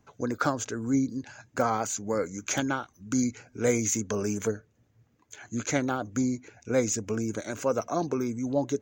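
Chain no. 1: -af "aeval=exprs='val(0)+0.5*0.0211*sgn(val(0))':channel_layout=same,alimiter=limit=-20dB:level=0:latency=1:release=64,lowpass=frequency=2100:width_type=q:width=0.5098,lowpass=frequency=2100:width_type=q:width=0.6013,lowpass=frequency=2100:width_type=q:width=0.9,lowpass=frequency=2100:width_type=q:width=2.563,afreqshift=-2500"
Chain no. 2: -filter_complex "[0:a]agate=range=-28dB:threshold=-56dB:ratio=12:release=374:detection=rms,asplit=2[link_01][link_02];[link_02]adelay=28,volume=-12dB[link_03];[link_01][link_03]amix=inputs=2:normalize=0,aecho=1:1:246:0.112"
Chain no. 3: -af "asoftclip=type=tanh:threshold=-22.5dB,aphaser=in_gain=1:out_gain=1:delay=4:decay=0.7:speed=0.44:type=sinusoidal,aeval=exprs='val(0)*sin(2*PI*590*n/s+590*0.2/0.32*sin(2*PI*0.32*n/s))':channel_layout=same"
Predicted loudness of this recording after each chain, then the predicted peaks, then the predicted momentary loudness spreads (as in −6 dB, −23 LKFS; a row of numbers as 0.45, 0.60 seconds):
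−28.0, −29.5, −30.0 LKFS; −17.5, −11.0, −12.5 dBFS; 6, 7, 12 LU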